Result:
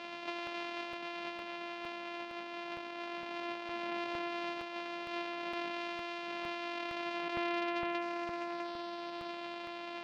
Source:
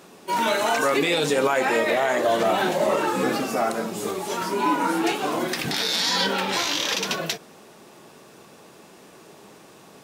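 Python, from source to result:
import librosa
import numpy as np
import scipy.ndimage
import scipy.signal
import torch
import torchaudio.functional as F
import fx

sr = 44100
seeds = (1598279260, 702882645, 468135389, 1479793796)

y = np.r_[np.sort(x[:len(x) // 128 * 128].reshape(-1, 128), axis=1).ravel(), x[len(x) // 128 * 128:]]
y = fx.notch(y, sr, hz=1800.0, q=16.0)
y = fx.echo_feedback(y, sr, ms=653, feedback_pct=46, wet_db=-15.5)
y = fx.over_compress(y, sr, threshold_db=-33.0, ratio=-1.0)
y = 10.0 ** (-23.5 / 20.0) * np.tanh(y / 10.0 ** (-23.5 / 20.0))
y = fx.cabinet(y, sr, low_hz=450.0, low_slope=12, high_hz=4300.0, hz=(470.0, 1300.0, 2600.0), db=(-9, -4, 5))
y = fx.buffer_crackle(y, sr, first_s=0.47, period_s=0.46, block=64, kind='repeat')
y = y * 10.0 ** (-2.0 / 20.0)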